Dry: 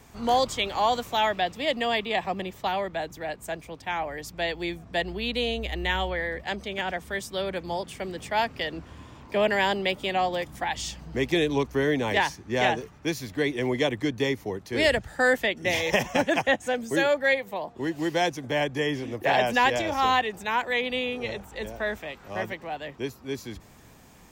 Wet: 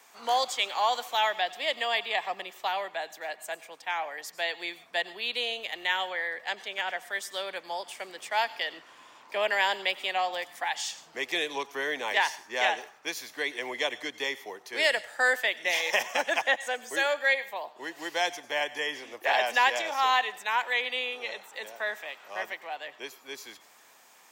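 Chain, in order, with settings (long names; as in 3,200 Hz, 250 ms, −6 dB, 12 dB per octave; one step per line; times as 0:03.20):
high-pass filter 760 Hz 12 dB per octave
on a send: high-shelf EQ 2,000 Hz +12 dB + convolution reverb RT60 0.55 s, pre-delay 82 ms, DRR 18.5 dB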